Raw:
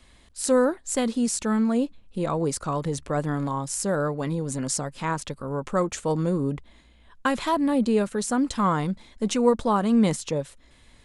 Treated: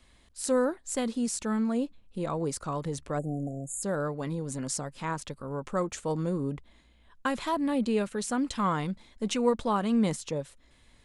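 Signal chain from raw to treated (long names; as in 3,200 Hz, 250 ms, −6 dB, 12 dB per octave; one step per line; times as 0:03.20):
0:03.19–0:03.82: time-frequency box erased 790–6,500 Hz
0:07.62–0:09.97: dynamic equaliser 2,700 Hz, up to +5 dB, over −43 dBFS, Q 1.1
level −5.5 dB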